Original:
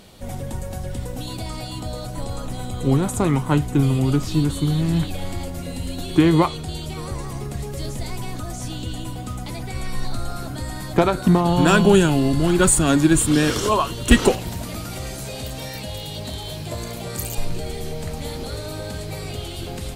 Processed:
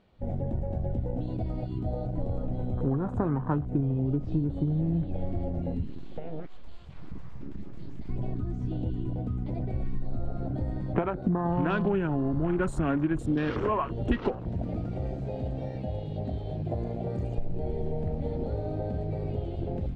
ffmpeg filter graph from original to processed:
ffmpeg -i in.wav -filter_complex "[0:a]asettb=1/sr,asplit=3[link_01][link_02][link_03];[link_01]atrim=end=5.844[link_04];[link_02]atrim=start=5.84:end=8.09,asetpts=PTS-STARTPTS,afade=type=in:duration=0.004:curve=qsin,afade=type=out:start_time=2.246:duration=0.004:curve=qsin,tiltshelf=frequency=1500:gain=-4.5,acompressor=threshold=-27dB:ratio=10:attack=3.2:release=140:knee=1:detection=peak,aeval=exprs='abs(val(0))':channel_layout=same[link_05];[link_03]atrim=start=8.086[link_06];[link_04][link_05]acrossfade=duration=0.004:curve1=hsin:curve2=qsin[link_07];[link_07][link_06]acrossfade=duration=0.004:curve1=qsin:curve2=hsin,afwtdn=0.0398,lowpass=2300,acompressor=threshold=-24dB:ratio=6" out.wav

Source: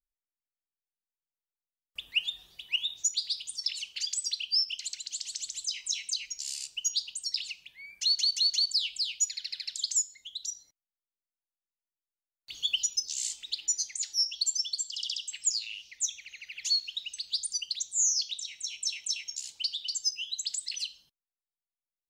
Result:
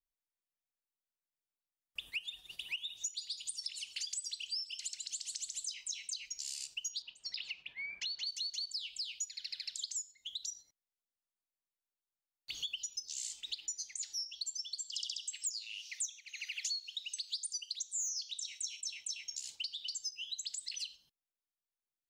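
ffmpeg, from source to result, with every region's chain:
ffmpeg -i in.wav -filter_complex "[0:a]asettb=1/sr,asplit=3[link_01][link_02][link_03];[link_01]atrim=end=2.004[link_04];[link_02]atrim=start=2:end=5.74,asetpts=PTS-STARTPTS,afade=type=in:duration=0.004:curve=qsin,afade=type=out:start_time=3.736:duration=0.004:curve=qsin,equalizer=frequency=9600:width=1.7:gain=9.5,aecho=1:1:164|328|492|656|820:0.106|0.0614|0.0356|0.0207|0.012,atrim=end_sample=164934[link_05];[link_03]atrim=start=5.736[link_06];[link_04][link_05]acrossfade=duration=0.004:curve1=hsin:curve2=qsin[link_07];[link_07][link_06]acrossfade=duration=0.004:curve1=qsin:curve2=hsin,asettb=1/sr,asplit=3[link_08][link_09][link_10];[link_08]atrim=end=7.024[link_11];[link_09]atrim=start=7.02:end=8.27,asetpts=PTS-STARTPTS,afade=type=in:duration=0.004:curve=qsin,afade=type=out:start_time=1.246:duration=0.004:curve=qsin,lowshelf=frequency=200:gain=-7.5,acontrast=86,lowpass=2200[link_12];[link_10]atrim=start=8.266[link_13];[link_11][link_12]acrossfade=duration=0.004:curve1=hsin:curve2=qsin[link_14];[link_14][link_13]acrossfade=duration=0.004:curve1=qsin:curve2=hsin,asettb=1/sr,asplit=3[link_15][link_16][link_17];[link_15]atrim=end=14.954[link_18];[link_16]atrim=start=14.95:end=18.81,asetpts=PTS-STARTPTS,afade=type=in:duration=0.004:curve=qsin,afade=type=out:start_time=3.856:duration=0.004:curve=qsin,equalizer=frequency=7800:width_type=o:width=2.4:gain=9.5,volume=11.5dB,asoftclip=hard,volume=-11.5dB,highpass=930[link_19];[link_17]atrim=start=18.806[link_20];[link_18][link_19]acrossfade=duration=0.004:curve1=hsin:curve2=qsin[link_21];[link_21][link_20]acrossfade=duration=0.004:curve1=qsin:curve2=hsin,acompressor=threshold=-41dB:ratio=6,agate=range=-7dB:threshold=-53dB:ratio=16:detection=peak,volume=2.5dB" out.wav

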